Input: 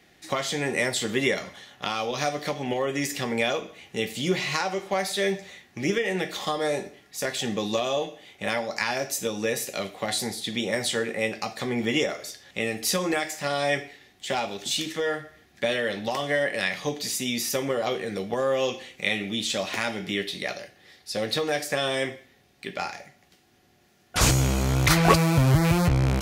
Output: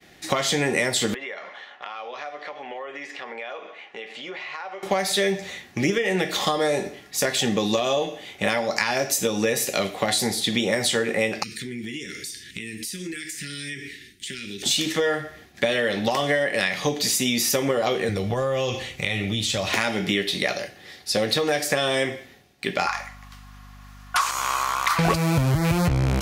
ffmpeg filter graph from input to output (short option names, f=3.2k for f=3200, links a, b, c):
-filter_complex "[0:a]asettb=1/sr,asplit=3[a][b][c];[a]atrim=end=1.144[d];[b]atrim=start=1.14:end=4.83,asetpts=PTS-STARTPTS,afade=t=in:d=0.004:c=qsin,afade=t=out:st=3.686:d=0.004:c=qsin,highpass=660,lowpass=2.2k,acompressor=threshold=-44dB:ratio=3:attack=3.2:release=140:knee=1:detection=peak[e];[c]atrim=start=4.826[f];[d][e]acrossfade=d=0.004:c1=hsin:c2=qsin[g];[g][f]acrossfade=d=0.004:c1=qsin:c2=hsin,asettb=1/sr,asplit=3[h][i][j];[h]atrim=end=11.434[k];[i]atrim=start=11.43:end=14.63,asetpts=PTS-STARTPTS,afade=t=in:d=0.004:c=qsin,afade=t=out:st=3.196:d=0.004:c=qsin,asuperstop=centerf=800:order=8:qfactor=0.62,equalizer=f=8.9k:w=7.9:g=12,acompressor=threshold=-39dB:ratio=8:attack=3.2:release=140:knee=1:detection=peak[l];[j]atrim=start=14.626[m];[k][l]acrossfade=d=0.004:c1=hsin:c2=qsin[n];[n][m]acrossfade=d=0.004:c1=qsin:c2=hsin,asettb=1/sr,asplit=3[o][p][q];[o]atrim=end=18.094[r];[p]atrim=start=18.09:end=19.73,asetpts=PTS-STARTPTS,afade=t=in:d=0.004:c=qsin,afade=t=out:st=1.636:d=0.004:c=qsin,lowshelf=f=160:t=q:w=1.5:g=9.5,bandreject=f=1.6k:w=24,acompressor=threshold=-31dB:ratio=3:attack=3.2:release=140:knee=1:detection=peak[s];[q]atrim=start=19.726[t];[r][s]acrossfade=d=0.004:c1=hsin:c2=qsin[u];[u][t]acrossfade=d=0.004:c1=qsin:c2=hsin,asettb=1/sr,asplit=3[v][w][x];[v]atrim=end=22.874[y];[w]atrim=start=22.87:end=24.99,asetpts=PTS-STARTPTS,afade=t=in:d=0.004:c=qsin,afade=t=out:st=2.116:d=0.004:c=qsin,acompressor=threshold=-25dB:ratio=6:attack=3.2:release=140:knee=1:detection=peak,highpass=f=1.1k:t=q:w=7.4,aeval=exprs='val(0)+0.00224*(sin(2*PI*50*n/s)+sin(2*PI*2*50*n/s)/2+sin(2*PI*3*50*n/s)/3+sin(2*PI*4*50*n/s)/4+sin(2*PI*5*50*n/s)/5)':c=same[z];[x]atrim=start=24.986[aa];[y][z]acrossfade=d=0.004:c1=hsin:c2=qsin[ab];[ab][aa]acrossfade=d=0.004:c1=qsin:c2=hsin,agate=range=-33dB:threshold=-55dB:ratio=3:detection=peak,acompressor=threshold=-28dB:ratio=5,volume=9dB"